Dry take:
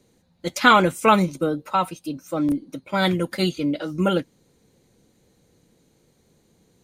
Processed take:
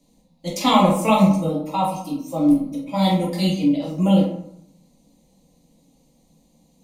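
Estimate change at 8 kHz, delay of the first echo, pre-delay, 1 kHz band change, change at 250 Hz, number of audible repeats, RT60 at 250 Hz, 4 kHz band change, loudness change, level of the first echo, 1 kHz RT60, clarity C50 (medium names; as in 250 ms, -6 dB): +2.0 dB, no echo, 6 ms, -0.5 dB, +5.5 dB, no echo, 0.80 s, 0.0 dB, +2.0 dB, no echo, 0.75 s, 4.5 dB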